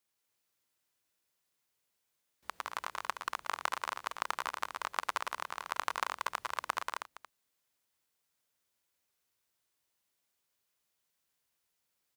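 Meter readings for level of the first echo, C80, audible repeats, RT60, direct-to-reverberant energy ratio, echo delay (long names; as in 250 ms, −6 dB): −11.0 dB, no reverb audible, 4, no reverb audible, no reverb audible, 114 ms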